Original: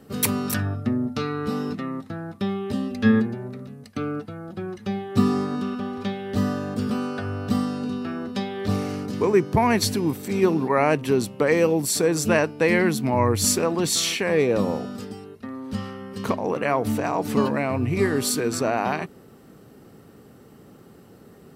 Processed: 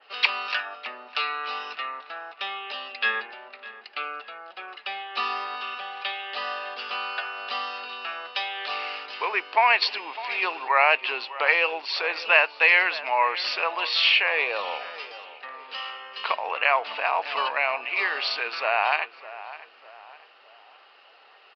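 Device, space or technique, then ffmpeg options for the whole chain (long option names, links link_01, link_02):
musical greeting card: -filter_complex "[0:a]adynamicequalizer=threshold=0.00891:dfrequency=5700:dqfactor=0.71:tfrequency=5700:tqfactor=0.71:attack=5:release=100:ratio=0.375:range=2.5:mode=cutabove:tftype=bell,aresample=11025,aresample=44100,highpass=frequency=740:width=0.5412,highpass=frequency=740:width=1.3066,equalizer=frequency=2700:width_type=o:width=0.47:gain=12,asplit=2[link_01][link_02];[link_02]adelay=604,lowpass=frequency=2100:poles=1,volume=-15dB,asplit=2[link_03][link_04];[link_04]adelay=604,lowpass=frequency=2100:poles=1,volume=0.44,asplit=2[link_05][link_06];[link_06]adelay=604,lowpass=frequency=2100:poles=1,volume=0.44,asplit=2[link_07][link_08];[link_08]adelay=604,lowpass=frequency=2100:poles=1,volume=0.44[link_09];[link_01][link_03][link_05][link_07][link_09]amix=inputs=5:normalize=0,volume=3.5dB"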